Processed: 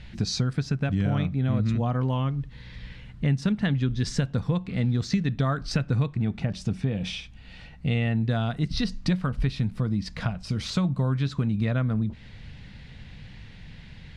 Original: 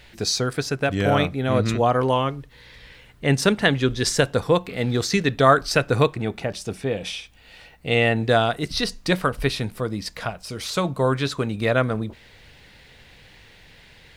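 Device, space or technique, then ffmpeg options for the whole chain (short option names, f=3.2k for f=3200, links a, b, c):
jukebox: -af "lowpass=5.8k,lowshelf=f=280:t=q:w=1.5:g=11,acompressor=threshold=-21dB:ratio=4,volume=-2dB"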